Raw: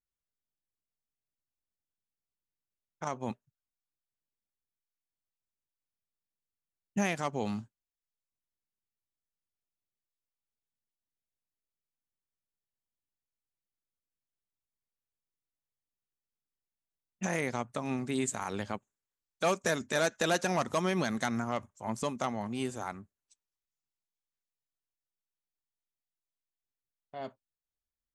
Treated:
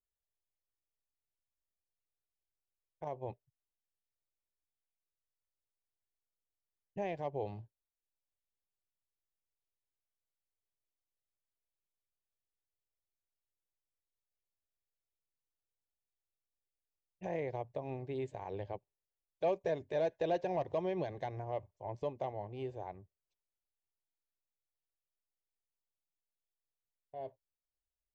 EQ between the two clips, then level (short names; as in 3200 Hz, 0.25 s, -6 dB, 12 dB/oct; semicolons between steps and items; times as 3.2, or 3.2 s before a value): air absorption 75 m; tape spacing loss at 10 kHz 40 dB; fixed phaser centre 550 Hz, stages 4; +1.0 dB